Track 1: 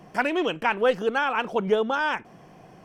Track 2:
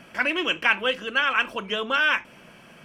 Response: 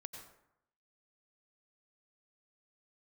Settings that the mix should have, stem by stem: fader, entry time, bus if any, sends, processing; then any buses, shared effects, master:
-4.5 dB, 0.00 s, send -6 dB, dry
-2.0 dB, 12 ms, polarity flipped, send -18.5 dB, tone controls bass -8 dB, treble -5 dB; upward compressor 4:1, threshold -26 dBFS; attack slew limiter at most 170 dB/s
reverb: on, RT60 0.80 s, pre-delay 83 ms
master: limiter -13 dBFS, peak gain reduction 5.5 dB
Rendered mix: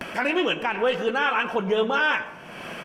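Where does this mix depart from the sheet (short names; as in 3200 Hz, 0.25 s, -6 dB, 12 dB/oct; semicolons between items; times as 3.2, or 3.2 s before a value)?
stem 2: polarity flipped; reverb return +8.5 dB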